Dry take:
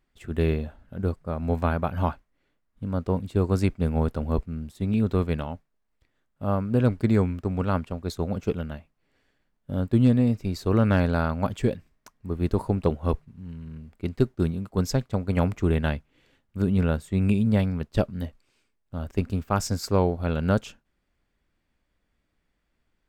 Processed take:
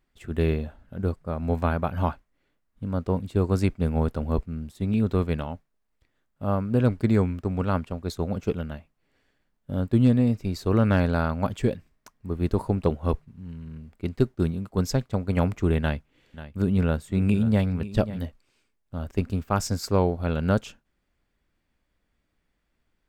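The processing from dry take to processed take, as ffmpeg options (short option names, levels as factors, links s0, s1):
-filter_complex "[0:a]asettb=1/sr,asplit=3[s0][s1][s2];[s0]atrim=end=15.804[s3];[s1]atrim=start=15.8:end=18.22,asetpts=PTS-STARTPTS,afade=t=in:d=0.004:c=qsin,afade=t=out:st=2.416:d=0.004:c=qsin,aecho=1:1:538:0.188,atrim=end_sample=106722[s4];[s2]atrim=start=18.216[s5];[s3][s4]acrossfade=d=0.004:c1=hsin:c2=qsin[s6];[s6][s5]acrossfade=d=0.004:c1=qsin:c2=hsin"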